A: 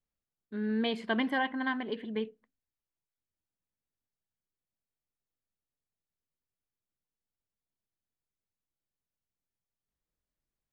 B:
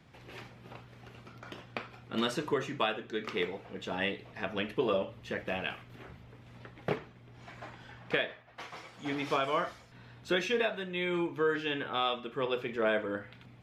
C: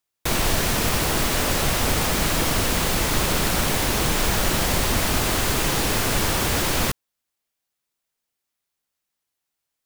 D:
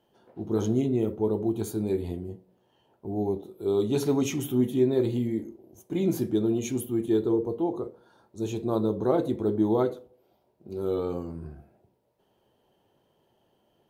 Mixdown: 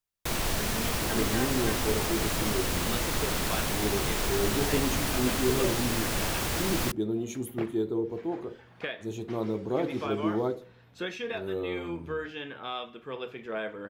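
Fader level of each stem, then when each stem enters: -7.5, -5.0, -8.0, -5.0 dB; 0.00, 0.70, 0.00, 0.65 s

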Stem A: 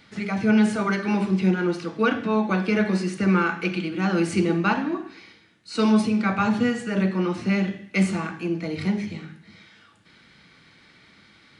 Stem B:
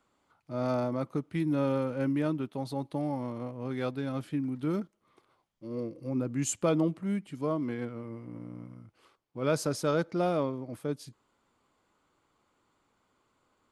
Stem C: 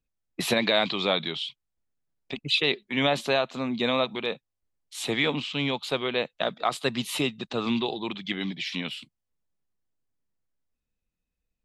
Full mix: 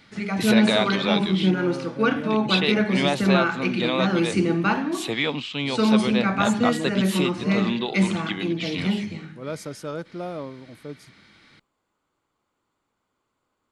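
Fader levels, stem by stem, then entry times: 0.0, -4.0, +0.5 dB; 0.00, 0.00, 0.00 s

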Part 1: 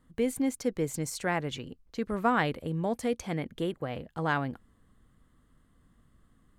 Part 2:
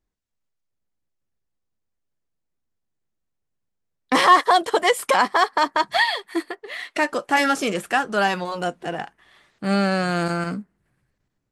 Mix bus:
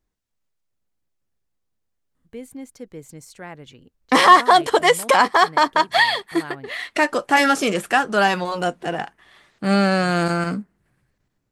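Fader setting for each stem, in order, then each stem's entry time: -7.5, +3.0 dB; 2.15, 0.00 s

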